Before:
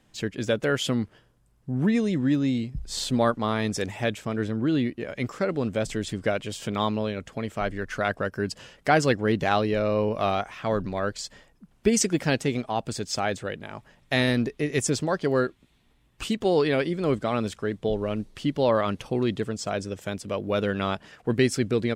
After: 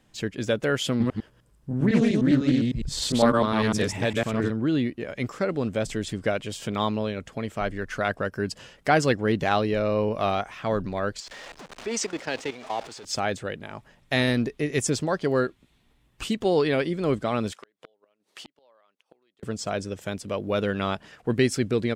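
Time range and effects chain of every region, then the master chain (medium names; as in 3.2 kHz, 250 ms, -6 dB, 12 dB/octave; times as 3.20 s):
0.90–4.50 s: chunks repeated in reverse 101 ms, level 0 dB + band-stop 740 Hz + loudspeaker Doppler distortion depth 0.2 ms
11.20–13.05 s: jump at every zero crossing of -28.5 dBFS + three-band isolator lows -16 dB, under 330 Hz, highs -22 dB, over 7.5 kHz + level held to a coarse grid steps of 14 dB
17.52–19.43 s: high-pass 550 Hz + inverted gate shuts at -25 dBFS, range -36 dB + transformer saturation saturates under 1.7 kHz
whole clip: none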